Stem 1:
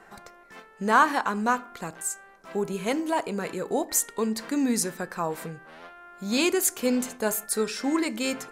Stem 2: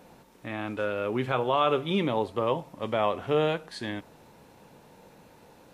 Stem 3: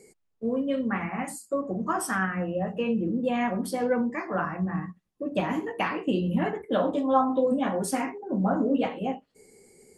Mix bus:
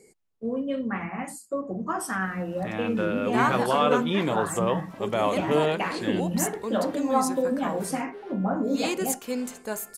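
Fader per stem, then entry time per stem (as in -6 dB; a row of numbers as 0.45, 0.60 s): -5.5, +1.0, -1.5 dB; 2.45, 2.20, 0.00 s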